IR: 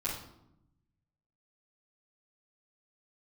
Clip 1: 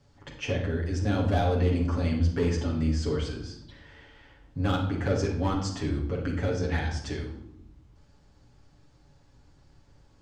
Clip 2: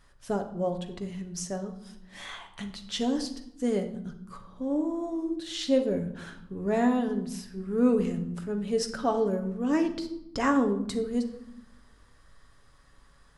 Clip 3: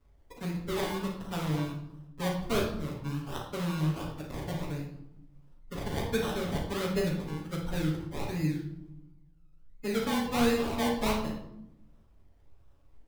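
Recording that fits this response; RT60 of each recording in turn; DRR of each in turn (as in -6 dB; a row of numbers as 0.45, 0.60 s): 3; 0.80, 0.85, 0.80 s; -4.0, 4.5, -10.5 dB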